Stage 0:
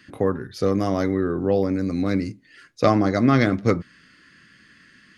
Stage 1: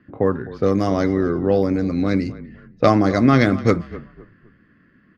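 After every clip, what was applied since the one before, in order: frequency-shifting echo 256 ms, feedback 33%, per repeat -32 Hz, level -17 dB; level-controlled noise filter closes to 880 Hz, open at -15 dBFS; trim +3 dB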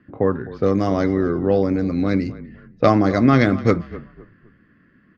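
distance through air 61 m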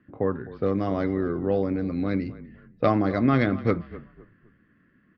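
low-pass 4.2 kHz 24 dB/octave; trim -6.5 dB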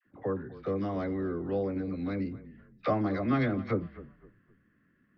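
phase dispersion lows, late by 59 ms, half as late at 790 Hz; trim -6.5 dB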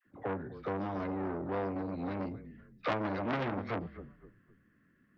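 transformer saturation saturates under 1.7 kHz

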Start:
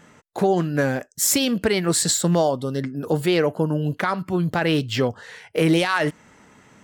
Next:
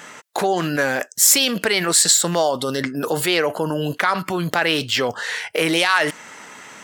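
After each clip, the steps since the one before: high-pass 1.1 kHz 6 dB/octave; in parallel at -2 dB: compressor with a negative ratio -38 dBFS, ratio -1; on the sum: trim +6.5 dB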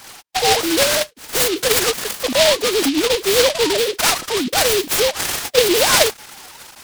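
formants replaced by sine waves; in parallel at -9 dB: integer overflow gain 16 dB; on the sum: delay time shaken by noise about 3.3 kHz, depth 0.17 ms; trim +2 dB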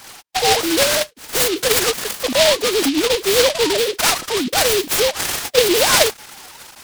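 no audible change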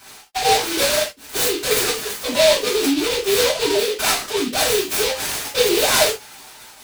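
reverberation, pre-delay 3 ms, DRR -5.5 dB; trim -9 dB

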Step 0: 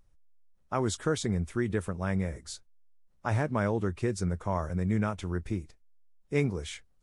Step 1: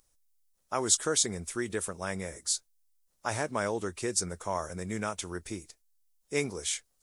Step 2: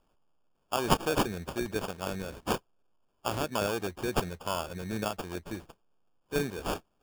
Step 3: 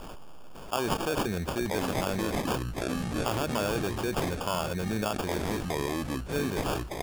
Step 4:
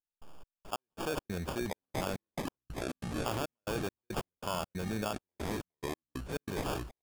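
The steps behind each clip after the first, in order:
tone controls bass -12 dB, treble +15 dB
sample-and-hold 22×
ever faster or slower copies 677 ms, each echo -6 st, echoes 2, each echo -6 dB; level flattener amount 70%; trim -6 dB
trance gate "..xx..x..xx.xxxx" 139 bpm -60 dB; trim -5 dB

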